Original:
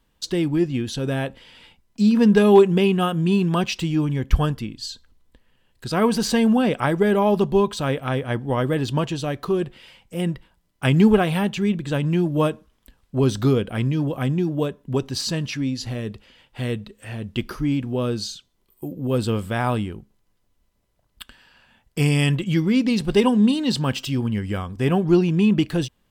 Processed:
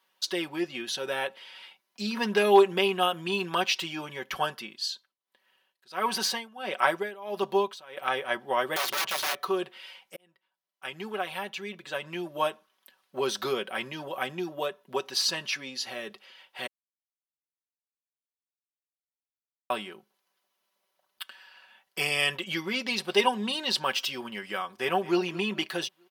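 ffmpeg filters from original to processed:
-filter_complex "[0:a]asettb=1/sr,asplit=3[a][b][c];[a]atrim=end=4.854[d];[b]atrim=start=4.85:end=7.97,asetpts=PTS-STARTPTS,afade=t=in:d=0.004:c=qsin,afade=t=out:st=3.116:d=0.004:c=qsin,tremolo=f=1.5:d=0.93[e];[c]atrim=start=7.966[f];[d][e]acrossfade=d=0.004:c1=hsin:c2=qsin[g];[g][f]acrossfade=d=0.004:c1=qsin:c2=hsin,asettb=1/sr,asplit=3[h][i][j];[h]atrim=end=8.764[k];[i]atrim=start=8.76:end=9.43,asetpts=PTS-STARTPTS,afade=t=in:d=0.004:c=qsin,afade=t=out:st=0.666:d=0.004:c=qsin,aeval=exprs='(mod(14.1*val(0)+1,2)-1)/14.1':c=same[l];[j]atrim=start=9.426[m];[k][l]acrossfade=d=0.004:c1=hsin:c2=qsin[n];[n][m]acrossfade=d=0.004:c1=qsin:c2=hsin,asplit=2[o][p];[p]afade=t=in:st=24.76:d=0.01,afade=t=out:st=25.19:d=0.01,aecho=0:1:220|440|660|880:0.133352|0.0600085|0.0270038|0.0121517[q];[o][q]amix=inputs=2:normalize=0,asplit=4[r][s][t][u];[r]atrim=end=10.16,asetpts=PTS-STARTPTS,afade=t=out:st=10.156:d=0.004:c=hsin[v];[s]atrim=start=10.16:end=16.67,asetpts=PTS-STARTPTS,afade=t=in:d=3.02,afade=t=out:st=6.506:d=0.004:c=hsin[w];[t]atrim=start=16.67:end=19.7,asetpts=PTS-STARTPTS,volume=0[x];[u]atrim=start=19.7,asetpts=PTS-STARTPTS,afade=t=in:d=0.004:c=hsin[y];[v][w][x][y]concat=n=4:v=0:a=1,highpass=690,equalizer=f=7.7k:t=o:w=0.35:g=-8.5,aecho=1:1:5.3:0.65"

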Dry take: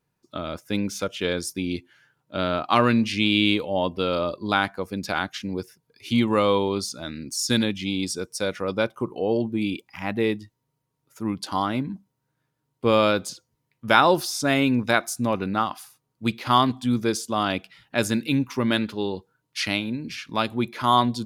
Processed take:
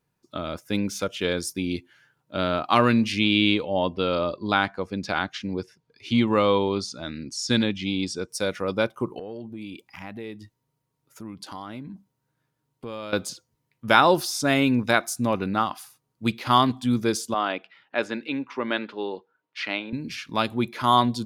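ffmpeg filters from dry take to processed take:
-filter_complex "[0:a]asettb=1/sr,asplit=3[a][b][c];[a]atrim=end=3.194[d];[b]atrim=start=3.19:end=8.29,asetpts=PTS-STARTPTS,afade=t=in:d=0.004:c=qsin,afade=t=out:st=5.096:d=0.004:c=qsin,lowpass=5.7k[e];[c]atrim=start=8.286[f];[d][e]acrossfade=d=0.004:c1=hsin:c2=qsin[g];[g][f]acrossfade=d=0.004:c1=qsin:c2=hsin,asettb=1/sr,asplit=3[h][i][j];[h]atrim=end=9.194[k];[i]atrim=start=9.19:end=13.13,asetpts=PTS-STARTPTS,afade=t=in:d=0.004:c=qsin,afade=t=out:st=3.936:d=0.004:c=qsin,acompressor=threshold=-37dB:ratio=3:attack=3.2:release=140:knee=1:detection=peak[l];[j]atrim=start=13.126[m];[k][l]acrossfade=d=0.004:c1=hsin:c2=qsin[n];[n][m]acrossfade=d=0.004:c1=qsin:c2=hsin,asettb=1/sr,asplit=3[o][p][q];[o]atrim=end=17.344[r];[p]atrim=start=17.34:end=19.93,asetpts=PTS-STARTPTS,afade=t=in:d=0.004:c=qsin,afade=t=out:st=2.586:d=0.004:c=qsin,highpass=370,lowpass=2.7k[s];[q]atrim=start=19.926[t];[r][s]acrossfade=d=0.004:c1=hsin:c2=qsin[u];[u][t]acrossfade=d=0.004:c1=qsin:c2=hsin"

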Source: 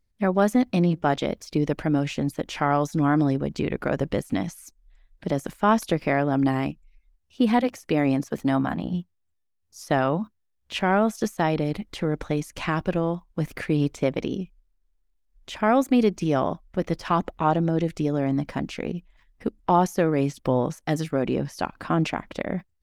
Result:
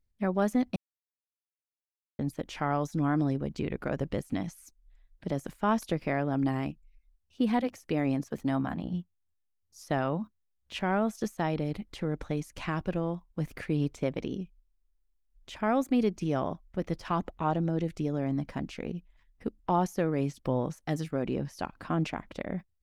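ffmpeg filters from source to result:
-filter_complex "[0:a]asplit=3[a][b][c];[a]atrim=end=0.76,asetpts=PTS-STARTPTS,afade=t=out:st=0.756:d=0.004:c=hsin[d];[b]atrim=start=0.76:end=2.19,asetpts=PTS-STARTPTS,volume=0[e];[c]atrim=start=2.19,asetpts=PTS-STARTPTS,afade=t=in:d=0.004:c=hsin[f];[d][e][f]concat=n=3:v=0:a=1,lowshelf=f=190:g=4.5,volume=-8dB"

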